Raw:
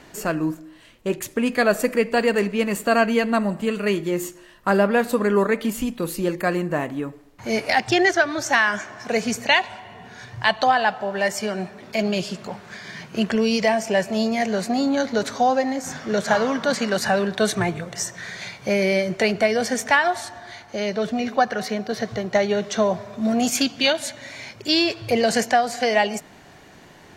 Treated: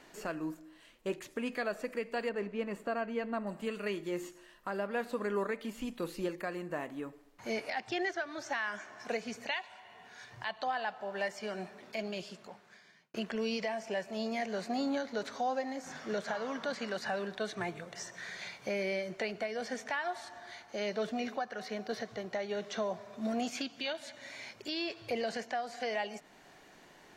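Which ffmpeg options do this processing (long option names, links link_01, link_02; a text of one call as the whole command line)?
ffmpeg -i in.wav -filter_complex "[0:a]asettb=1/sr,asplit=3[link_01][link_02][link_03];[link_01]atrim=end=2.294[link_04];[link_02]atrim=start=2.29:end=3.47,asetpts=PTS-STARTPTS,afade=type=in:duration=0.004:curve=qsin,afade=type=out:start_time=1.176:duration=0.004:curve=qsin,lowpass=frequency=1400:poles=1[link_05];[link_03]atrim=start=3.466[link_06];[link_04][link_05]acrossfade=duration=0.004:curve1=hsin:curve2=qsin[link_07];[link_07][link_06]acrossfade=duration=0.004:curve1=qsin:curve2=hsin,asettb=1/sr,asplit=3[link_08][link_09][link_10];[link_08]atrim=end=9.514[link_11];[link_09]atrim=start=9.51:end=10.31,asetpts=PTS-STARTPTS,afade=type=in:duration=0.004:curve=qsin,afade=type=out:start_time=0.796:duration=0.004:curve=qsin,equalizer=frequency=190:width=0.37:gain=-7.5[link_12];[link_10]atrim=start=10.306[link_13];[link_11][link_12]acrossfade=duration=0.004:curve1=hsin:curve2=qsin[link_14];[link_14][link_13]acrossfade=duration=0.004:curve1=qsin:curve2=hsin,asplit=2[link_15][link_16];[link_15]atrim=end=13.14,asetpts=PTS-STARTPTS,afade=type=out:start_time=11.74:duration=1.4[link_17];[link_16]atrim=start=13.14,asetpts=PTS-STARTPTS,afade=type=in:duration=0.004:curve=hsin[link_18];[link_17][link_18]concat=n=2:v=0:a=1,acrossover=split=5200[link_19][link_20];[link_20]acompressor=threshold=-46dB:ratio=4:attack=1:release=60[link_21];[link_19][link_21]amix=inputs=2:normalize=0,equalizer=frequency=87:width_type=o:width=2:gain=-11.5,alimiter=limit=-16dB:level=0:latency=1:release=456,volume=-9dB" out.wav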